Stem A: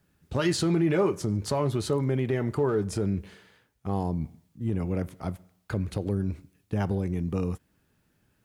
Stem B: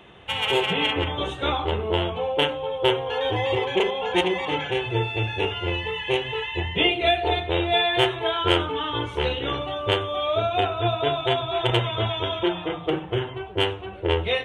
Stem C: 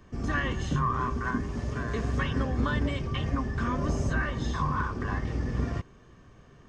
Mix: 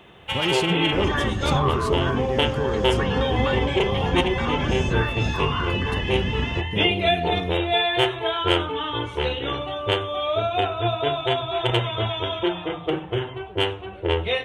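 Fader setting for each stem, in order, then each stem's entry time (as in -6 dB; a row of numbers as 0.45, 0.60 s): -1.5, 0.0, +2.5 dB; 0.00, 0.00, 0.80 s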